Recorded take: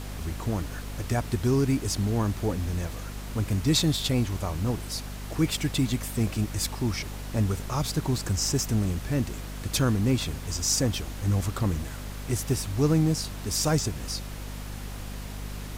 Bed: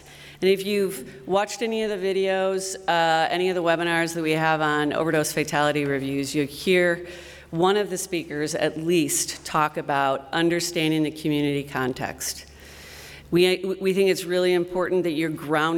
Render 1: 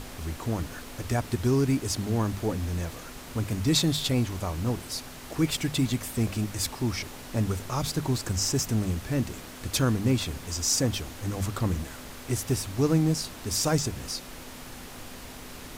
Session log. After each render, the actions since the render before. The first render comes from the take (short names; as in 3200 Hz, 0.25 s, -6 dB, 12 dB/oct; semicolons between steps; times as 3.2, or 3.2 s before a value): notches 50/100/150/200 Hz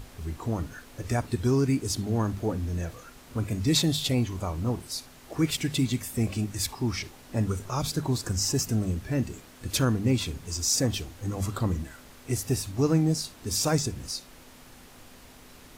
noise print and reduce 8 dB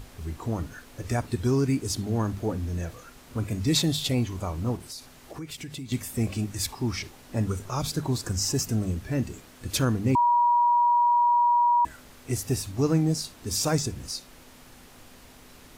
4.76–5.92 compressor 4:1, threshold -36 dBFS; 10.15–11.85 bleep 959 Hz -17.5 dBFS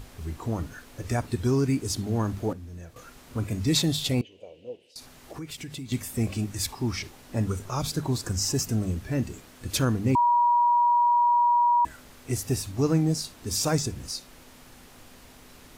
2.53–2.96 gain -10.5 dB; 4.21–4.96 double band-pass 1200 Hz, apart 2.5 oct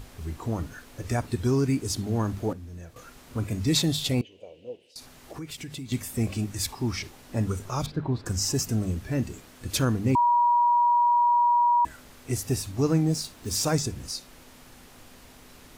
7.86–8.26 air absorption 380 m; 13.13–13.65 block floating point 5-bit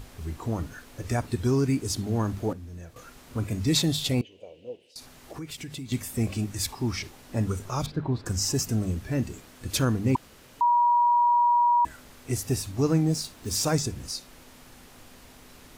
10.16–10.61 room tone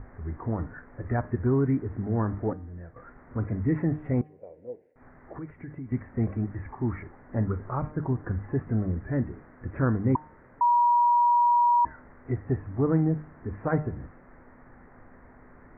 steep low-pass 2000 Hz 72 dB/oct; de-hum 152.3 Hz, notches 11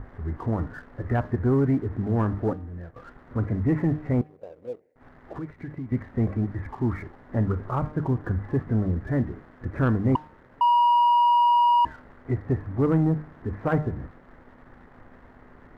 sample leveller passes 1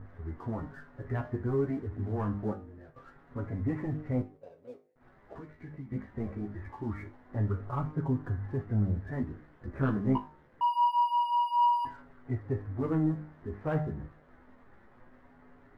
resonator 51 Hz, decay 0.25 s, harmonics all, mix 80%; chorus voices 2, 0.25 Hz, delay 11 ms, depth 3.9 ms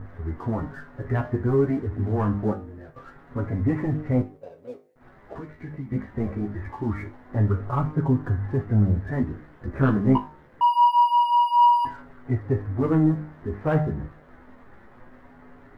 gain +8.5 dB